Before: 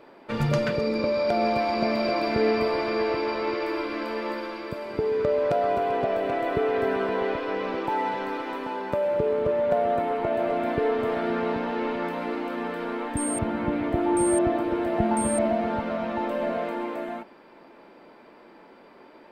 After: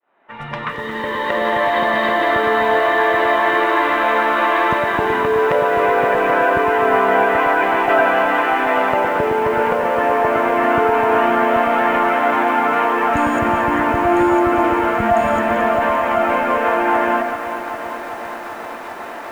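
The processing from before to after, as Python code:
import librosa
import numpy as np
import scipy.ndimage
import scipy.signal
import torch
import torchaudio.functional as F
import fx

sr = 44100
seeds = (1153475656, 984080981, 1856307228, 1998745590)

p1 = fx.fade_in_head(x, sr, length_s=3.65)
p2 = fx.band_shelf(p1, sr, hz=1800.0, db=15.5, octaves=2.6)
p3 = fx.over_compress(p2, sr, threshold_db=-25.0, ratio=-1.0)
p4 = p2 + (p3 * librosa.db_to_amplitude(1.0))
p5 = fx.formant_shift(p4, sr, semitones=-4)
p6 = p5 + fx.echo_alternate(p5, sr, ms=111, hz=970.0, feedback_pct=52, wet_db=-4.5, dry=0)
p7 = fx.echo_crushed(p6, sr, ms=392, feedback_pct=80, bits=6, wet_db=-11.5)
y = p7 * librosa.db_to_amplitude(-2.0)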